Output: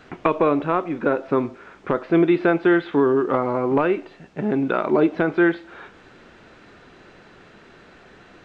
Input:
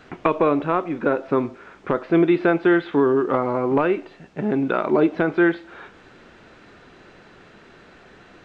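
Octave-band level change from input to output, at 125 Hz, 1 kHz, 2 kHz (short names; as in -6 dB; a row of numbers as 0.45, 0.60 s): 0.0, 0.0, 0.0 dB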